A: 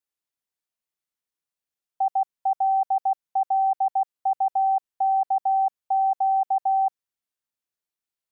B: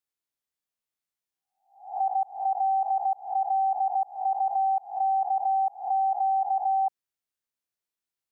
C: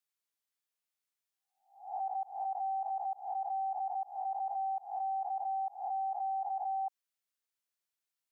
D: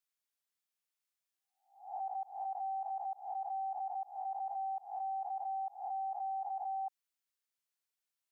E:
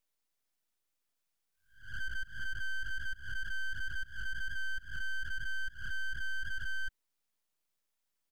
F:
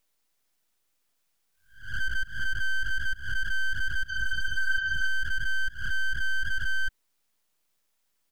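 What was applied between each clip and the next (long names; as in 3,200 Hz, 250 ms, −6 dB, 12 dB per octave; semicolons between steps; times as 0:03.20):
peak hold with a rise ahead of every peak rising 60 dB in 0.47 s; level −3 dB
low-shelf EQ 480 Hz −11.5 dB; brickwall limiter −31 dBFS, peak gain reduction 8.5 dB
low-shelf EQ 490 Hz −7.5 dB; level −1 dB
high-pass filter 810 Hz 12 dB per octave; comb filter 6.4 ms, depth 30%; full-wave rectification; level +6.5 dB
healed spectral selection 0:04.11–0:05.05, 610–7,000 Hz after; level +9 dB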